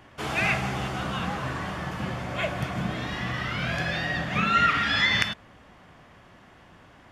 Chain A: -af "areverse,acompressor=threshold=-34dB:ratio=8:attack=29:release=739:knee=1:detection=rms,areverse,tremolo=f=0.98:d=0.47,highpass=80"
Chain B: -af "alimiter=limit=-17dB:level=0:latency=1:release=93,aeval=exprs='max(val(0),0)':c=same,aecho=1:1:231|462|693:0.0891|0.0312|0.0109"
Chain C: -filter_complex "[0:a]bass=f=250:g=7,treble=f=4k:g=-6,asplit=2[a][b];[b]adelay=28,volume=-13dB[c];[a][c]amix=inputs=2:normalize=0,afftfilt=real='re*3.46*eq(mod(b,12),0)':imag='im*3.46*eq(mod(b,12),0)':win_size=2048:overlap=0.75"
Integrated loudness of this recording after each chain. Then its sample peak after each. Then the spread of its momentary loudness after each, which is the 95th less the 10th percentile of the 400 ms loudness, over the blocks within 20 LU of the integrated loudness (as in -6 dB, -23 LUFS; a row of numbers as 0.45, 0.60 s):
-40.0, -33.0, -30.0 LUFS; -17.5, -16.5, -14.0 dBFS; 18, 8, 11 LU